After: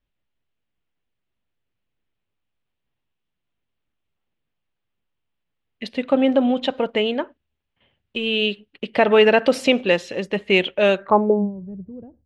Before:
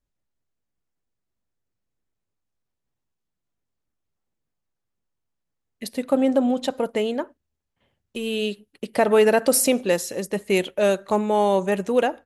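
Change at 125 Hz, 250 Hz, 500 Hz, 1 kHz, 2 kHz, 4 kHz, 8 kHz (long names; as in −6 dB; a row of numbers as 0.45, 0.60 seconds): can't be measured, +2.0 dB, +1.5 dB, +1.5 dB, +6.0 dB, +7.0 dB, below −15 dB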